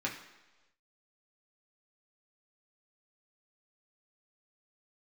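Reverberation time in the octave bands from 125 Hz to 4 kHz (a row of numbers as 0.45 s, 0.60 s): 0.90 s, 0.95 s, 1.2 s, 1.1 s, 1.1 s, 1.1 s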